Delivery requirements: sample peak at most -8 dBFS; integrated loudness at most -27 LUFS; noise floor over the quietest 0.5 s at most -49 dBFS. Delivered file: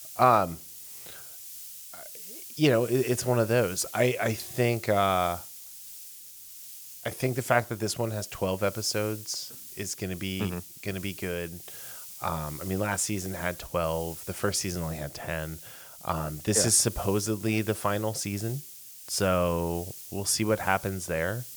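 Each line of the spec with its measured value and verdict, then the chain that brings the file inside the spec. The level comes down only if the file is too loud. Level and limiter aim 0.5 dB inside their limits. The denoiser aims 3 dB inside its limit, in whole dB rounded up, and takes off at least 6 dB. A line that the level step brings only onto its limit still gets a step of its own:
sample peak -7.0 dBFS: fail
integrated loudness -28.5 LUFS: pass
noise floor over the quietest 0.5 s -46 dBFS: fail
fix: noise reduction 6 dB, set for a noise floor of -46 dBFS; peak limiter -8.5 dBFS

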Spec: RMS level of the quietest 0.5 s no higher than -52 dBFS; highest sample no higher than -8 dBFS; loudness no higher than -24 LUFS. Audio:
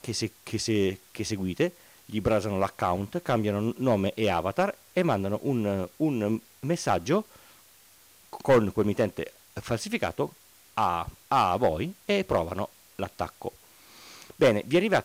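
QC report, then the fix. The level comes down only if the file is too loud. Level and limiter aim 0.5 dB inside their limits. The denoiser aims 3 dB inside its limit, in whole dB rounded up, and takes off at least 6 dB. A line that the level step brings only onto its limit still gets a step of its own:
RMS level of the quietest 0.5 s -56 dBFS: pass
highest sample -14.0 dBFS: pass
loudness -28.0 LUFS: pass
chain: none needed

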